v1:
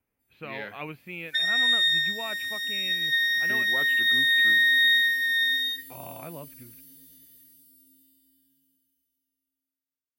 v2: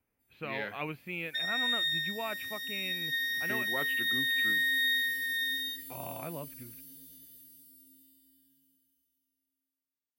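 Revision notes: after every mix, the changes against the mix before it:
second sound -8.5 dB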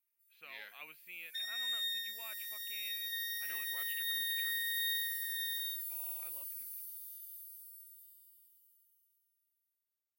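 master: add differentiator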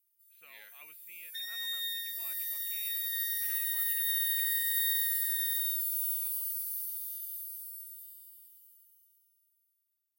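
speech -4.5 dB; first sound +9.0 dB

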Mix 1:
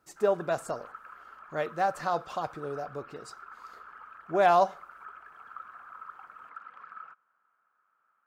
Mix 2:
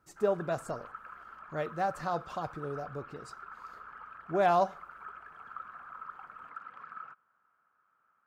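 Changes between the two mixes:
speech -5.0 dB; master: add bass shelf 220 Hz +11.5 dB

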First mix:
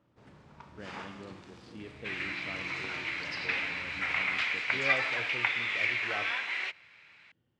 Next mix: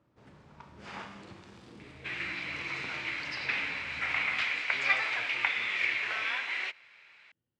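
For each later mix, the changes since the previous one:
speech -11.0 dB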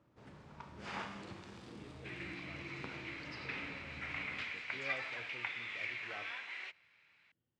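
second sound -11.5 dB

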